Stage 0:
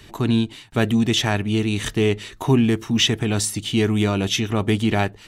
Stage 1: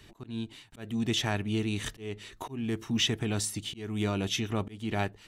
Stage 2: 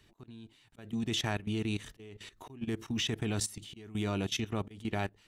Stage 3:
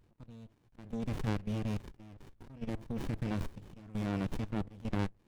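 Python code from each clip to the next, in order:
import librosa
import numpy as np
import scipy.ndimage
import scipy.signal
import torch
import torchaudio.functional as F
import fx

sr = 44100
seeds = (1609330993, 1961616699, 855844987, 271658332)

y1 = fx.auto_swell(x, sr, attack_ms=330.0)
y1 = F.gain(torch.from_numpy(y1), -9.0).numpy()
y2 = fx.level_steps(y1, sr, step_db=16)
y3 = fx.running_max(y2, sr, window=65)
y3 = F.gain(torch.from_numpy(y3), -1.0).numpy()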